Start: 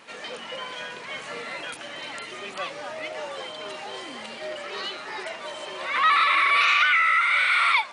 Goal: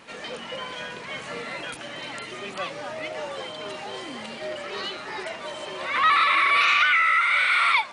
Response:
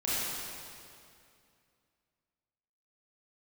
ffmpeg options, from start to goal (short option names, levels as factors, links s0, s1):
-af "lowshelf=f=230:g=10"